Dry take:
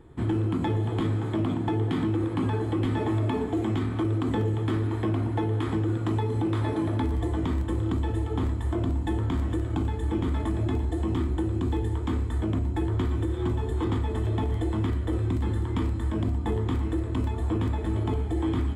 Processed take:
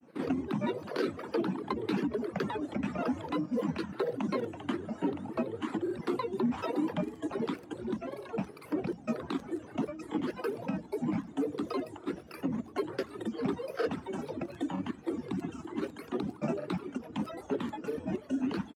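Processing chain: reverb removal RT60 1.5 s; high-pass 190 Hz 24 dB/octave; granulator, grains 20 per s, spray 33 ms, pitch spread up and down by 7 st

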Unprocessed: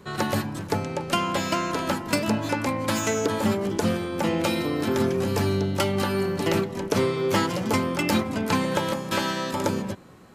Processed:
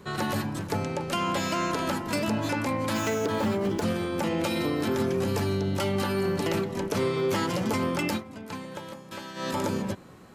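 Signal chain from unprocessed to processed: 2.93–3.82 s: median filter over 5 samples; 8.04–9.50 s: dip -14 dB, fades 0.16 s; peak limiter -18.5 dBFS, peak gain reduction 7 dB

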